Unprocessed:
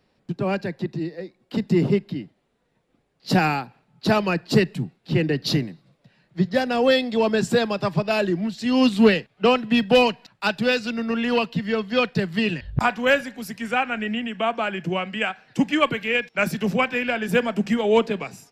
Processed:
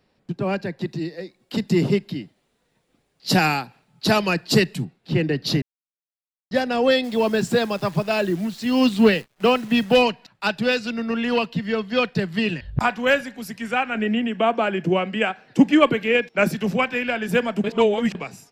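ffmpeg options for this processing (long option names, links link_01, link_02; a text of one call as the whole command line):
ffmpeg -i in.wav -filter_complex "[0:a]asettb=1/sr,asplit=3[link_01][link_02][link_03];[link_01]atrim=end=0.814[link_04];[link_02]atrim=start=0.81:end=4.85,asetpts=PTS-STARTPTS,afade=type=in:duration=0.004:curve=qsin,afade=type=out:start_time=4.036:duration=0.004:curve=qsin,highshelf=frequency=3100:gain=10[link_05];[link_03]atrim=start=4.846[link_06];[link_04][link_05]acrossfade=duration=0.004:curve1=hsin:curve2=qsin[link_07];[link_07][link_06]acrossfade=duration=0.004:curve1=qsin:curve2=hsin,asplit=3[link_08][link_09][link_10];[link_08]afade=type=out:start_time=7.03:duration=0.02[link_11];[link_09]acrusher=bits=8:dc=4:mix=0:aa=0.000001,afade=type=in:start_time=7.03:duration=0.02,afade=type=out:start_time=9.95:duration=0.02[link_12];[link_10]afade=type=in:start_time=9.95:duration=0.02[link_13];[link_11][link_12][link_13]amix=inputs=3:normalize=0,asettb=1/sr,asplit=3[link_14][link_15][link_16];[link_14]atrim=end=13.954[link_17];[link_15]atrim=start=13.95:end=16.53,asetpts=PTS-STARTPTS,afade=type=in:duration=0.004:curve=qsin,afade=type=out:start_time=2.576:duration=0.004:curve=qsin,equalizer=frequency=360:width=0.65:gain=7.5[link_18];[link_16]atrim=start=16.526[link_19];[link_17][link_18]acrossfade=duration=0.004:curve1=hsin:curve2=qsin[link_20];[link_20][link_19]acrossfade=duration=0.004:curve1=qsin:curve2=hsin,asplit=5[link_21][link_22][link_23][link_24][link_25];[link_21]atrim=end=5.62,asetpts=PTS-STARTPTS,afade=type=out:start_time=5.616:duration=0.004:curve=hsin[link_26];[link_22]atrim=start=5.62:end=6.51,asetpts=PTS-STARTPTS,volume=0[link_27];[link_23]atrim=start=6.51:end=17.642,asetpts=PTS-STARTPTS,afade=type=in:duration=0.004:curve=hsin[link_28];[link_24]atrim=start=17.638:end=18.152,asetpts=PTS-STARTPTS,areverse[link_29];[link_25]atrim=start=18.148[link_30];[link_26][link_27][link_28]concat=n=3:v=0:a=1[link_31];[link_31][link_29]acrossfade=duration=0.004:curve1=hsin:curve2=hsin[link_32];[link_32][link_30]acrossfade=duration=0.004:curve1=hsin:curve2=hsin" out.wav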